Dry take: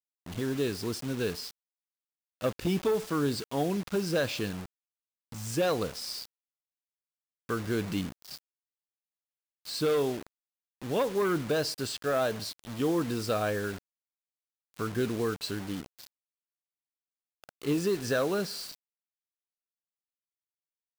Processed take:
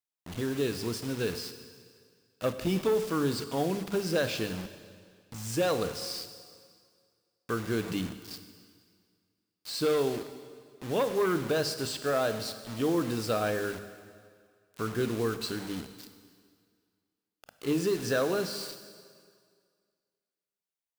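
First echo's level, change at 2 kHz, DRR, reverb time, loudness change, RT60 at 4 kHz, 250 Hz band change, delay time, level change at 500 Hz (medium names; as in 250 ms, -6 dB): no echo, +0.5 dB, 10.0 dB, 2.0 s, 0.0 dB, 1.8 s, 0.0 dB, no echo, +0.5 dB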